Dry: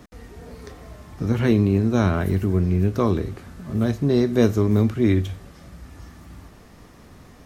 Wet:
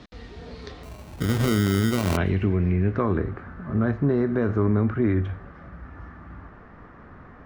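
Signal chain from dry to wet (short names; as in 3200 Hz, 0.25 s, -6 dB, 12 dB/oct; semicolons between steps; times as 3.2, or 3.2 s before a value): limiter -13.5 dBFS, peak gain reduction 9 dB; low-pass sweep 4000 Hz -> 1500 Hz, 1.77–3.23; 0.83–2.17 sample-rate reducer 1700 Hz, jitter 0%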